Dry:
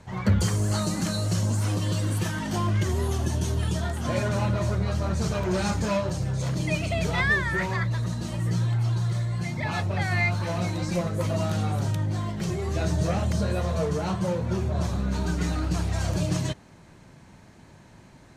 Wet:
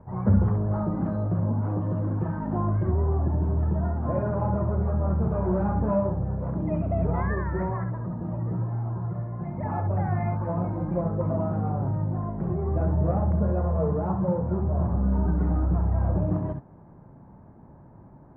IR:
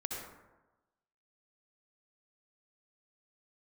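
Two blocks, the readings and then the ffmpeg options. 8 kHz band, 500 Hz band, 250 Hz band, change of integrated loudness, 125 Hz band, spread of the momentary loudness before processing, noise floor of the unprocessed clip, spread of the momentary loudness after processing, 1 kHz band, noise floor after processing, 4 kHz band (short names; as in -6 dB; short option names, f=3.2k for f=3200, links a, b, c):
under -40 dB, +1.0 dB, +1.5 dB, 0.0 dB, 0.0 dB, 4 LU, -52 dBFS, 5 LU, 0.0 dB, -50 dBFS, under -35 dB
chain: -filter_complex "[0:a]lowpass=f=1.1k:w=0.5412,lowpass=f=1.1k:w=1.3066[a];[1:a]atrim=start_sample=2205,atrim=end_sample=3087[b];[a][b]afir=irnorm=-1:irlink=0,volume=3dB"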